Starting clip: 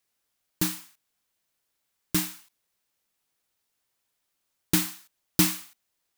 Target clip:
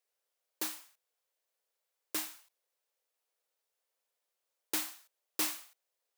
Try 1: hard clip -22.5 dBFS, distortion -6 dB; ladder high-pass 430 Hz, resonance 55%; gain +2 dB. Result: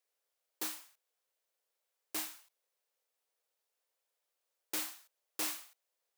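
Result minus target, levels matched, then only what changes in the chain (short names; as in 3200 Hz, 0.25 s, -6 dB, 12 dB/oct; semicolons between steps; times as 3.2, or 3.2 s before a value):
hard clip: distortion +8 dB
change: hard clip -15 dBFS, distortion -14 dB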